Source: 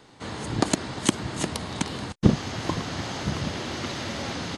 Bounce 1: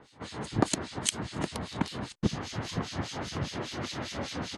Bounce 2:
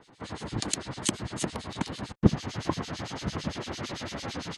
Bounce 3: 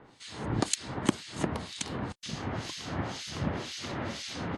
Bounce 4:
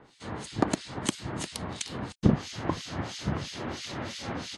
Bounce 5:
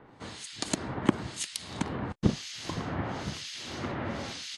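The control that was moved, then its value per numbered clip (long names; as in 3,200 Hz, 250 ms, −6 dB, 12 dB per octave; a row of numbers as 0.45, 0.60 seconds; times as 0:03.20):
two-band tremolo in antiphase, speed: 5, 8.9, 2, 3, 1 Hertz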